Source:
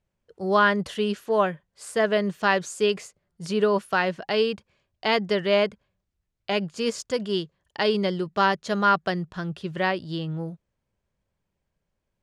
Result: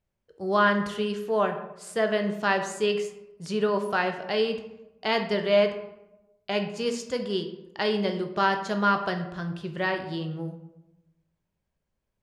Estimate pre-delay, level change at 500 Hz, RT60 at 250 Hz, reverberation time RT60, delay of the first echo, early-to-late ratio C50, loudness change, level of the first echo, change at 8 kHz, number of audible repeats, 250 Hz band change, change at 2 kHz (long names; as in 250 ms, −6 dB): 13 ms, −1.5 dB, 1.1 s, 0.90 s, no echo audible, 9.0 dB, −2.0 dB, no echo audible, −3.0 dB, no echo audible, −1.5 dB, −2.5 dB